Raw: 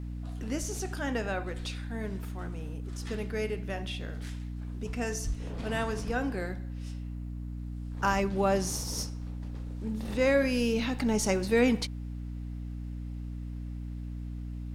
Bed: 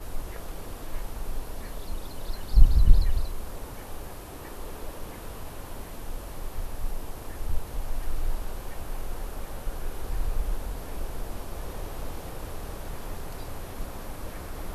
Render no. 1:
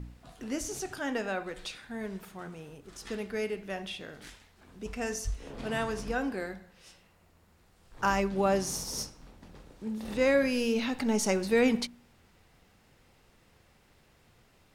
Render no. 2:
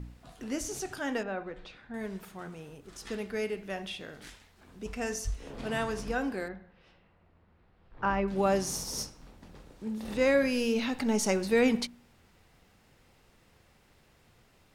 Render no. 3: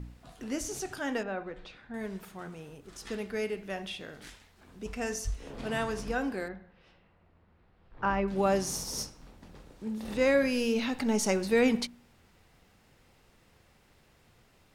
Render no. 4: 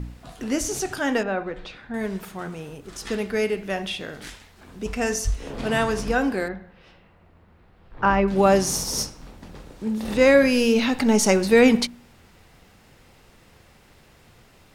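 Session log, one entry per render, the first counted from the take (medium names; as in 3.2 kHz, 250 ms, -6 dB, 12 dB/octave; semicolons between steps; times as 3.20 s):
de-hum 60 Hz, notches 5
1.23–1.94 s: tape spacing loss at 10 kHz 29 dB; 6.48–8.28 s: distance through air 360 m
no audible change
trim +9.5 dB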